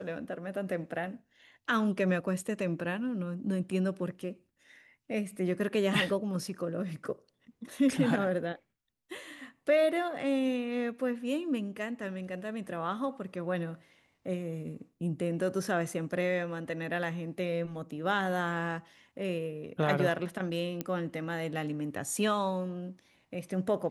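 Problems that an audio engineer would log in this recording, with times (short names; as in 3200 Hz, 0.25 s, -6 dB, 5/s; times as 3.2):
20.81 pop -18 dBFS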